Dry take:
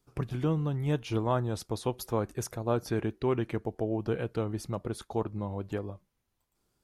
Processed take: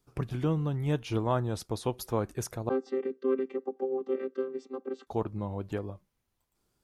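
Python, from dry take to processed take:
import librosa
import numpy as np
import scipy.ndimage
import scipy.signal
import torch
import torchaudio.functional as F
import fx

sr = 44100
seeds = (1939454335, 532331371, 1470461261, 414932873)

y = fx.chord_vocoder(x, sr, chord='bare fifth', root=60, at=(2.69, 5.07))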